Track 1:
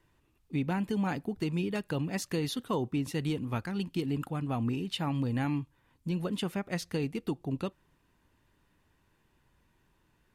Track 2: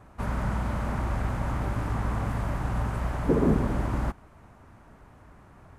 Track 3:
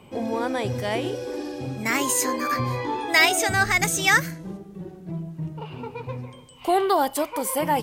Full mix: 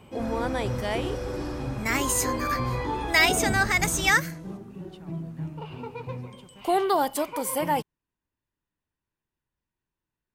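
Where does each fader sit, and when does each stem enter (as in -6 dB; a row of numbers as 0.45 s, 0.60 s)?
-19.0 dB, -7.5 dB, -2.5 dB; 0.00 s, 0.00 s, 0.00 s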